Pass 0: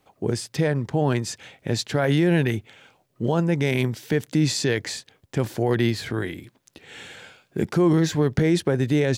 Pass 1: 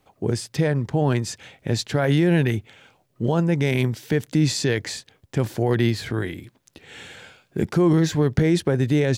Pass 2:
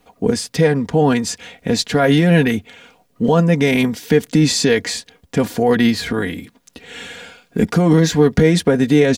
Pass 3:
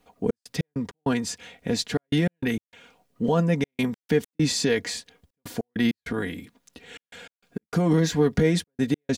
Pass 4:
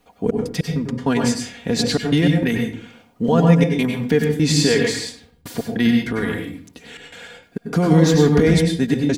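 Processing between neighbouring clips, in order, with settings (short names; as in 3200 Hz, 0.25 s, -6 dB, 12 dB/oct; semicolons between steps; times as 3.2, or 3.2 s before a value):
low shelf 100 Hz +6.5 dB
comb 4.2 ms, depth 74%; gain +6 dB
step gate "xx.x.x.xxxx" 99 bpm -60 dB; gain -8 dB
reverb RT60 0.50 s, pre-delay 90 ms, DRR 1.5 dB; gain +4.5 dB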